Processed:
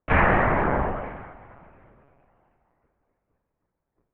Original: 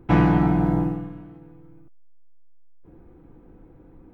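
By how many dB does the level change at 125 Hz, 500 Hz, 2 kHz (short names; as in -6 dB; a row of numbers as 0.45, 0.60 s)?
-6.5, +3.5, +9.5 dB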